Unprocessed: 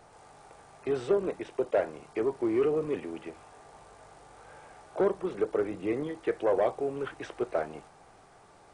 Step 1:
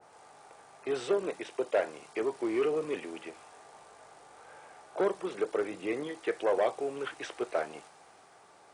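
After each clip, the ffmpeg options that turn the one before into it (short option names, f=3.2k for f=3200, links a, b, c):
-af "highpass=f=380:p=1,adynamicequalizer=threshold=0.00355:dfrequency=1900:dqfactor=0.7:tfrequency=1900:tqfactor=0.7:attack=5:release=100:ratio=0.375:range=3:mode=boostabove:tftype=highshelf"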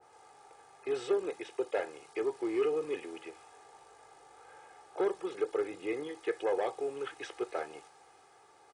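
-af "aecho=1:1:2.4:0.55,volume=-4.5dB"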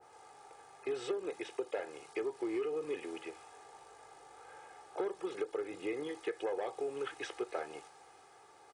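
-af "acompressor=threshold=-34dB:ratio=6,volume=1dB"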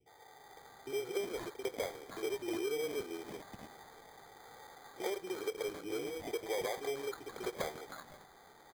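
-filter_complex "[0:a]acrossover=split=320|1300[a][b][c];[b]adelay=60[d];[c]adelay=370[e];[a][d][e]amix=inputs=3:normalize=0,acrusher=samples=16:mix=1:aa=0.000001,volume=1.5dB"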